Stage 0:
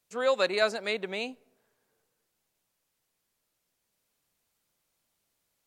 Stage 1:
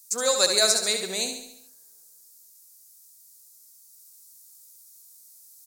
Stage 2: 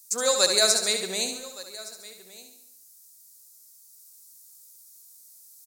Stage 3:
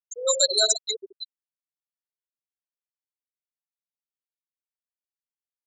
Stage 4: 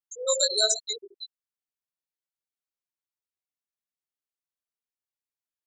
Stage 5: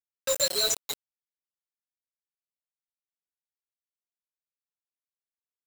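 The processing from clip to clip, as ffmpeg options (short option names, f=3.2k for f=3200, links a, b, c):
-filter_complex "[0:a]asplit=2[a][b];[b]aecho=0:1:70|140|210|280|350|420:0.447|0.237|0.125|0.0665|0.0352|0.0187[c];[a][c]amix=inputs=2:normalize=0,aexciter=amount=8.1:drive=9.5:freq=4.5k"
-af "aecho=1:1:1167:0.106"
-af "afftfilt=real='re*gte(hypot(re,im),0.251)':imag='im*gte(hypot(re,im),0.251)':win_size=1024:overlap=0.75,equalizer=f=100:t=o:w=0.67:g=-3,equalizer=f=250:t=o:w=0.67:g=-3,equalizer=f=6.3k:t=o:w=0.67:g=11"
-af "flanger=delay=17:depth=2.1:speed=1"
-af "aecho=1:1:7.1:0.76,acrusher=bits=3:mix=0:aa=0.000001,volume=-5dB"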